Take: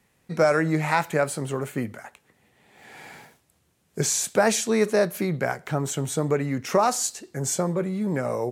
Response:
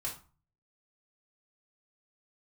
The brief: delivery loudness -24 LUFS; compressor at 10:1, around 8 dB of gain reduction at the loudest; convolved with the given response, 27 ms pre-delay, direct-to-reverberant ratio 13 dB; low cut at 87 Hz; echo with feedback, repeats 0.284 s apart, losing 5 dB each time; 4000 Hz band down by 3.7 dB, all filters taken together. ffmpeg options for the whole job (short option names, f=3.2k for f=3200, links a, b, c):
-filter_complex "[0:a]highpass=87,equalizer=f=4k:t=o:g=-5,acompressor=threshold=-23dB:ratio=10,aecho=1:1:284|568|852|1136|1420|1704|1988:0.562|0.315|0.176|0.0988|0.0553|0.031|0.0173,asplit=2[a][b];[1:a]atrim=start_sample=2205,adelay=27[c];[b][c]afir=irnorm=-1:irlink=0,volume=-14dB[d];[a][d]amix=inputs=2:normalize=0,volume=3.5dB"